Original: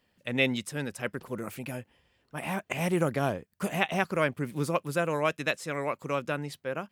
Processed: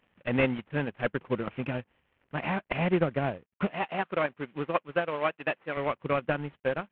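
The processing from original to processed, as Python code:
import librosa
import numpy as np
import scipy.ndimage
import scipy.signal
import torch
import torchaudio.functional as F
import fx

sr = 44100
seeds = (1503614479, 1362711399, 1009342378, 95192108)

y = fx.cvsd(x, sr, bps=16000)
y = fx.highpass(y, sr, hz=430.0, slope=6, at=(3.71, 5.77))
y = fx.rider(y, sr, range_db=10, speed_s=2.0)
y = fx.transient(y, sr, attack_db=5, sustain_db=-9)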